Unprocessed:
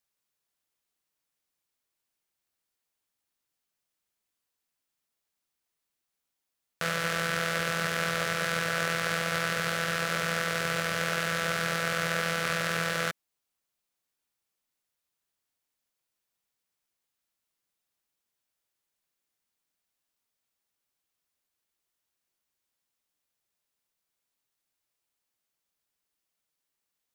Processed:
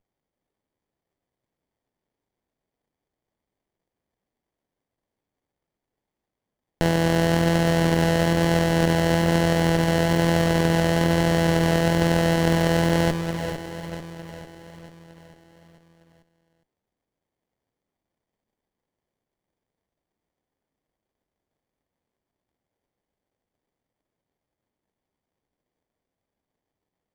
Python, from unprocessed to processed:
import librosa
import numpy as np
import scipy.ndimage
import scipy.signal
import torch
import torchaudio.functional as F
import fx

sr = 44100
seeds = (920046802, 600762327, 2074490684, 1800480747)

p1 = fx.echo_feedback(x, sr, ms=445, feedback_pct=57, wet_db=-8.5)
p2 = fx.vibrato(p1, sr, rate_hz=1.1, depth_cents=10.0)
p3 = p2 + fx.echo_single(p2, sr, ms=408, db=-10.5, dry=0)
p4 = fx.running_max(p3, sr, window=33)
y = p4 * librosa.db_to_amplitude(4.5)